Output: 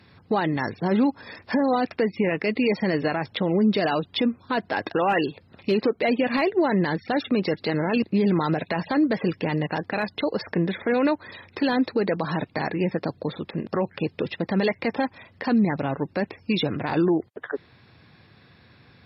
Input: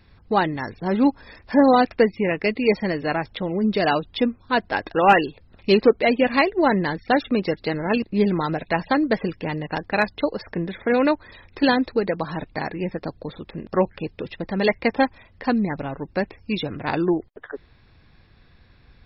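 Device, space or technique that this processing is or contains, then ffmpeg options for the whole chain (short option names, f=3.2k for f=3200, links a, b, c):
podcast mastering chain: -af "highpass=f=99:w=0.5412,highpass=f=99:w=1.3066,deesser=0.7,acompressor=threshold=-19dB:ratio=3,alimiter=limit=-17.5dB:level=0:latency=1:release=26,volume=4.5dB" -ar 32000 -c:a libmp3lame -b:a 96k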